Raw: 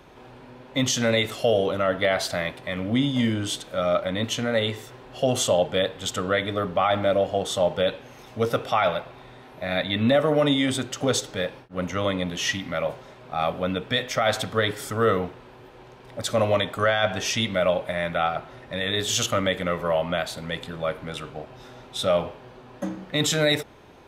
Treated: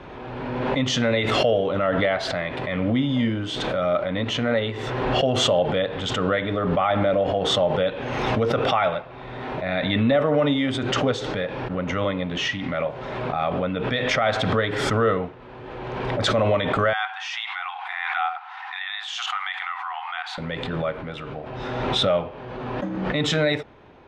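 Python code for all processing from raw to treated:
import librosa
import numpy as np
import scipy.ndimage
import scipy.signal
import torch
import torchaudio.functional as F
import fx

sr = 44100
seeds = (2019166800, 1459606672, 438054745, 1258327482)

y = fx.chain(x, sr, fx.brickwall_highpass(low_hz=710.0),
    fx.high_shelf(hz=5000.0, db=-5.0), at=(16.93, 20.38))
y = scipy.signal.sosfilt(scipy.signal.butter(2, 3000.0, 'lowpass', fs=sr, output='sos'), y)
y = fx.pre_swell(y, sr, db_per_s=27.0)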